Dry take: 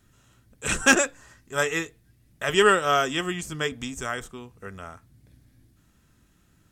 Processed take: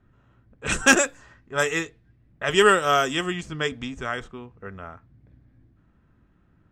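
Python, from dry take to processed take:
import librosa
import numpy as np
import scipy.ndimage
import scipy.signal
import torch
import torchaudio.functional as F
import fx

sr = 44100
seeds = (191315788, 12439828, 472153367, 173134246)

y = fx.env_lowpass(x, sr, base_hz=1500.0, full_db=-20.0)
y = y * librosa.db_to_amplitude(1.5)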